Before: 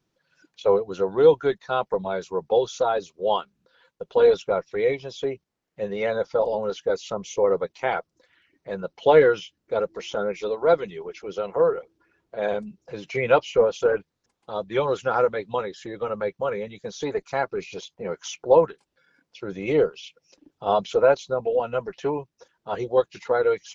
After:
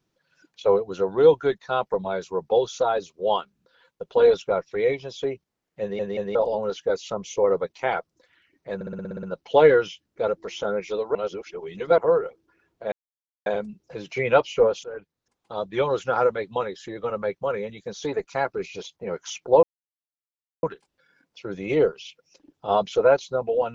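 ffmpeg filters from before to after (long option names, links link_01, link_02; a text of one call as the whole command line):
ffmpeg -i in.wav -filter_complex "[0:a]asplit=17[link_01][link_02][link_03][link_04][link_05][link_06][link_07][link_08][link_09][link_10][link_11][link_12][link_13][link_14][link_15][link_16][link_17];[link_01]atrim=end=5.992[link_18];[link_02]atrim=start=5.808:end=5.992[link_19];[link_03]atrim=start=5.808:end=5.992[link_20];[link_04]atrim=start=6.348:end=8.812[link_21];[link_05]atrim=start=8.748:end=8.812[link_22];[link_06]atrim=start=8.748:end=8.812[link_23];[link_07]atrim=start=8.748:end=8.812[link_24];[link_08]atrim=start=8.748:end=8.812[link_25];[link_09]atrim=start=8.748:end=8.812[link_26];[link_10]atrim=start=8.748:end=8.812[link_27];[link_11]atrim=start=8.748:end=8.812[link_28];[link_12]atrim=start=8.748:end=10.672[link_29];[link_13]atrim=start=10.668:end=11.502,asetpts=PTS-STARTPTS,areverse[link_30];[link_14]atrim=start=11.498:end=12.44,asetpts=PTS-STARTPTS,afade=type=out:start_time=0.938:duration=0.004:curve=hsin,apad=pad_dur=0.54[link_31];[link_15]atrim=start=12.44:end=13.82,asetpts=PTS-STARTPTS,afade=type=in:duration=0.004:curve=hsin,afade=type=out:start_time=1.376:duration=0.004:curve=hsin:silence=0.0944061[link_32];[link_16]atrim=start=13.82:end=18.61,asetpts=PTS-STARTPTS,afade=type=in:duration=0.69:silence=0.0944061,afade=type=out:start_time=4.786:duration=0.004:curve=hsin,apad=pad_dur=1[link_33];[link_17]atrim=start=18.61,asetpts=PTS-STARTPTS,afade=type=in:duration=0.004:curve=hsin[link_34];[link_18][link_19]acrossfade=duration=0.004:curve1=hsin:curve2=hsin[link_35];[link_35][link_20]acrossfade=duration=0.004:curve1=hsin:curve2=hsin[link_36];[link_36][link_21]acrossfade=duration=0.004:curve1=hsin:curve2=hsin[link_37];[link_37][link_22]acrossfade=duration=0.004:curve1=hsin:curve2=hsin[link_38];[link_38][link_23]acrossfade=duration=0.004:curve1=hsin:curve2=hsin[link_39];[link_39][link_24]acrossfade=duration=0.004:curve1=hsin:curve2=hsin[link_40];[link_40][link_25]acrossfade=duration=0.004:curve1=hsin:curve2=hsin[link_41];[link_41][link_26]acrossfade=duration=0.004:curve1=hsin:curve2=hsin[link_42];[link_42][link_27]acrossfade=duration=0.004:curve1=hsin:curve2=hsin[link_43];[link_43][link_28]acrossfade=duration=0.004:curve1=hsin:curve2=hsin[link_44];[link_44][link_29]acrossfade=duration=0.004:curve1=hsin:curve2=hsin[link_45];[link_45][link_30]acrossfade=duration=0.004:curve1=hsin:curve2=hsin[link_46];[link_31][link_32][link_33][link_34]concat=n=4:v=0:a=1[link_47];[link_46][link_47]acrossfade=duration=0.004:curve1=hsin:curve2=hsin" out.wav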